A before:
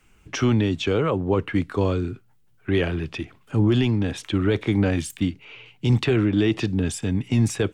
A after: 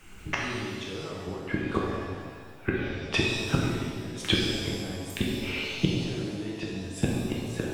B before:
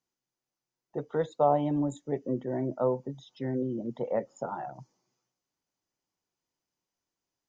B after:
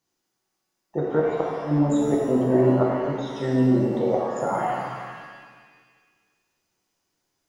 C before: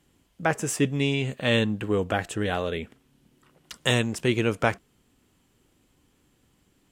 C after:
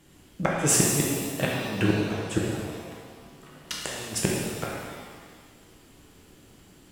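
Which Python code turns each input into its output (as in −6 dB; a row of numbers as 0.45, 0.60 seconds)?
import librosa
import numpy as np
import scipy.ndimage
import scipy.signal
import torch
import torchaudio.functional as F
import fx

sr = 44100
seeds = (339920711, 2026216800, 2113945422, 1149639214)

y = fx.gate_flip(x, sr, shuts_db=-18.0, range_db=-27)
y = fx.rev_shimmer(y, sr, seeds[0], rt60_s=1.6, semitones=7, shimmer_db=-8, drr_db=-3.5)
y = y * 10.0 ** (6.5 / 20.0)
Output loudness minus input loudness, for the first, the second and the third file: −7.0, +8.0, −0.5 LU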